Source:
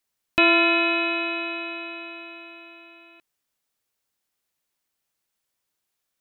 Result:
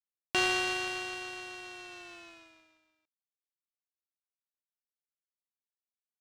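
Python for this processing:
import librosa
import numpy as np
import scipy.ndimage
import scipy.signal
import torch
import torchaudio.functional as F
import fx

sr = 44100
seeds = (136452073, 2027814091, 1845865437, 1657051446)

y = fx.doppler_pass(x, sr, speed_mps=30, closest_m=13.0, pass_at_s=2.29)
y = fx.power_curve(y, sr, exponent=2.0)
y = y * 10.0 ** (9.0 / 20.0)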